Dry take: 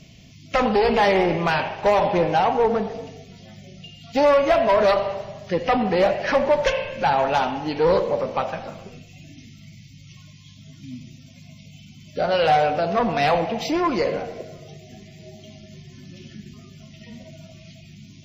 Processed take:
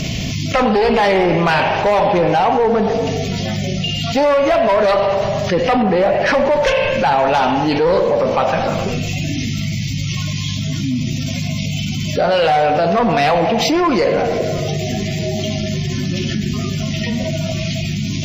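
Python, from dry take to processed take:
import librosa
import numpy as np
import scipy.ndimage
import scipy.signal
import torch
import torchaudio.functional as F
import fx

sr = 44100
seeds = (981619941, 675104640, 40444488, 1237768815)

p1 = fx.peak_eq(x, sr, hz=6000.0, db=-7.5, octaves=2.3, at=(5.82, 6.26))
p2 = 10.0 ** (-21.5 / 20.0) * np.tanh(p1 / 10.0 ** (-21.5 / 20.0))
p3 = p1 + (p2 * 10.0 ** (-4.5 / 20.0))
y = fx.env_flatten(p3, sr, amount_pct=70)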